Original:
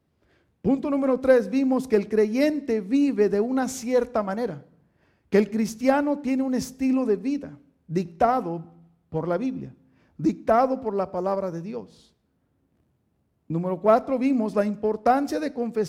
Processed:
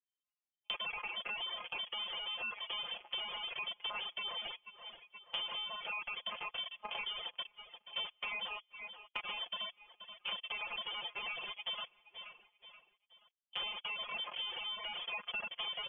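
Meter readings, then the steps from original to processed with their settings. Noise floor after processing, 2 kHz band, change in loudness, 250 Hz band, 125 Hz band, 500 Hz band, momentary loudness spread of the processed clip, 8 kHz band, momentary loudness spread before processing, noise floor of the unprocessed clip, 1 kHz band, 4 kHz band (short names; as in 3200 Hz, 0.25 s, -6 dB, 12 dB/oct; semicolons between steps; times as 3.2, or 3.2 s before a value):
under -85 dBFS, -4.5 dB, -15.5 dB, under -40 dB, under -35 dB, -32.0 dB, 12 LU, under -35 dB, 11 LU, -70 dBFS, -18.5 dB, +10.0 dB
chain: median-filter separation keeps harmonic; vocoder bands 32, saw 205 Hz; in parallel at -7 dB: fuzz box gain 46 dB, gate -42 dBFS; on the sum: inverted band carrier 3300 Hz; band shelf 710 Hz +11.5 dB; comb 5.7 ms, depth 65%; gate with hold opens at -47 dBFS; feedback echo 0.478 s, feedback 43%, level -23.5 dB; limiter -14.5 dBFS, peak gain reduction 11.5 dB; compressor 4:1, threshold -36 dBFS, peak gain reduction 14.5 dB; reverb removal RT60 1.2 s; gain -3.5 dB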